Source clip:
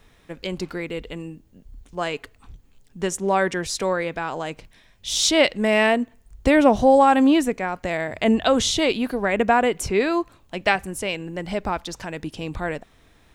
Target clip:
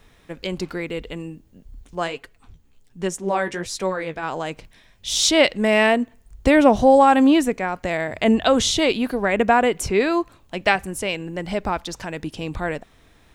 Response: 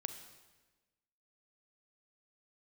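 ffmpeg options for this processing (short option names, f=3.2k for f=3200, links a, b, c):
-filter_complex "[0:a]asplit=3[a][b][c];[a]afade=t=out:st=2.06:d=0.02[d];[b]flanger=delay=5.3:depth=9.4:regen=35:speed=1.3:shape=sinusoidal,afade=t=in:st=2.06:d=0.02,afade=t=out:st=4.22:d=0.02[e];[c]afade=t=in:st=4.22:d=0.02[f];[d][e][f]amix=inputs=3:normalize=0,volume=1.5dB"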